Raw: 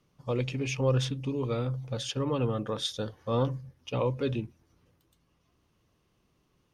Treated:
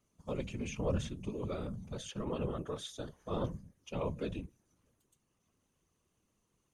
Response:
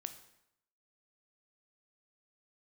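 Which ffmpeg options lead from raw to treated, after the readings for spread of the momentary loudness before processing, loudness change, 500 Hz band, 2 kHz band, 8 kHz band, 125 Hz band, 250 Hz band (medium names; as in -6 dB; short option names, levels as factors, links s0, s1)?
8 LU, -8.5 dB, -8.0 dB, -9.0 dB, -7.5 dB, -10.0 dB, -6.5 dB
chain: -filter_complex "[0:a]superequalizer=15b=3.16:16b=3.16,acrossover=split=3200[s0][s1];[s1]acompressor=threshold=0.01:ratio=4:attack=1:release=60[s2];[s0][s2]amix=inputs=2:normalize=0,afftfilt=real='hypot(re,im)*cos(2*PI*random(0))':imag='hypot(re,im)*sin(2*PI*random(1))':win_size=512:overlap=0.75,volume=0.794"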